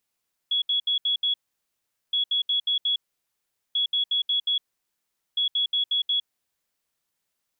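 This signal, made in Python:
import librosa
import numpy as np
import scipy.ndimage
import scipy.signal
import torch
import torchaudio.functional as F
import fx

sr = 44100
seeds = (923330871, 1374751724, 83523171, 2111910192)

y = fx.beep_pattern(sr, wave='sine', hz=3360.0, on_s=0.11, off_s=0.07, beeps=5, pause_s=0.79, groups=4, level_db=-20.5)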